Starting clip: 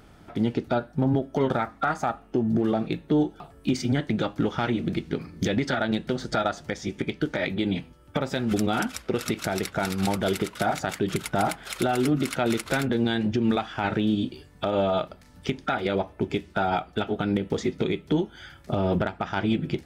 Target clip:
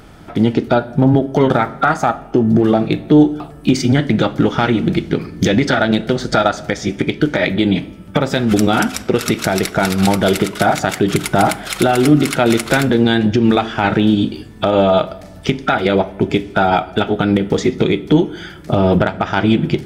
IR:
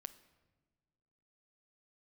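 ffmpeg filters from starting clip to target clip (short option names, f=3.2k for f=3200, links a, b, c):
-filter_complex "[0:a]asplit=2[a][b];[1:a]atrim=start_sample=2205,asetrate=48510,aresample=44100[c];[b][c]afir=irnorm=-1:irlink=0,volume=13dB[d];[a][d]amix=inputs=2:normalize=0,volume=1dB"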